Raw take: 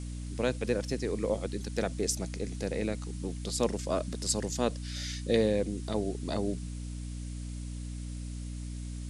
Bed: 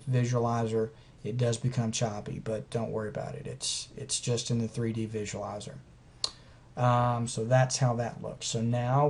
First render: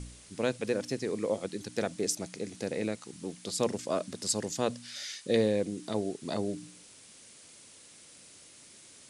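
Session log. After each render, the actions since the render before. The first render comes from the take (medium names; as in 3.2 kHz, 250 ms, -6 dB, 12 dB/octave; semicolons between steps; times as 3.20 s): de-hum 60 Hz, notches 5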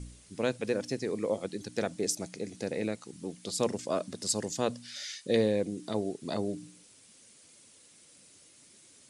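noise reduction 6 dB, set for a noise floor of -54 dBFS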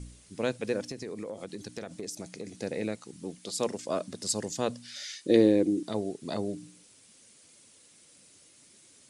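0.91–2.57 s: compression 12:1, threshold -33 dBFS; 3.38–3.88 s: high-pass 210 Hz 6 dB/octave; 5.20–5.83 s: peaking EQ 320 Hz +14.5 dB 0.49 oct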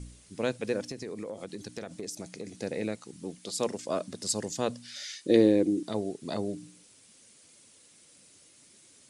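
no audible change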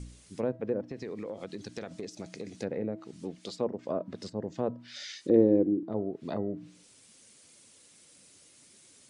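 low-pass that closes with the level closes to 780 Hz, closed at -28 dBFS; de-hum 323 Hz, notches 6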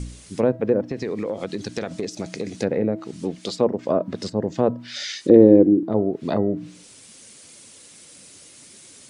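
trim +11.5 dB; peak limiter -1 dBFS, peak gain reduction 2.5 dB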